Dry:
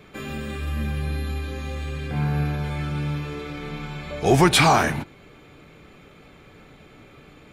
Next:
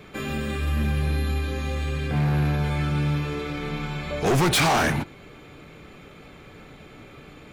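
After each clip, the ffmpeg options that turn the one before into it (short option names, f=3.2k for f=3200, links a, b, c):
-af "volume=21dB,asoftclip=hard,volume=-21dB,volume=3dB"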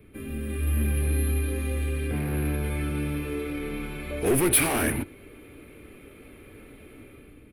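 -filter_complex "[0:a]firequalizer=gain_entry='entry(100,0);entry(150,-12);entry(250,-2);entry(760,-20);entry(2400,-12);entry(3700,-20);entry(6900,-25);entry(10000,5);entry(15000,-6)':delay=0.05:min_phase=1,acrossover=split=340[a][b];[b]dynaudnorm=f=170:g=7:m=10dB[c];[a][c]amix=inputs=2:normalize=0"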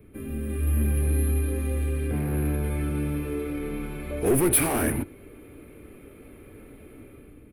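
-af "equalizer=f=3.4k:w=0.55:g=-7.5,volume=1.5dB"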